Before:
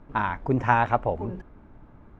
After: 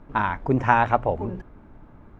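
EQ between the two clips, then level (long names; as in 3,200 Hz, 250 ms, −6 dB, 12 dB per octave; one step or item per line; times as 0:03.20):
mains-hum notches 60/120 Hz
+2.5 dB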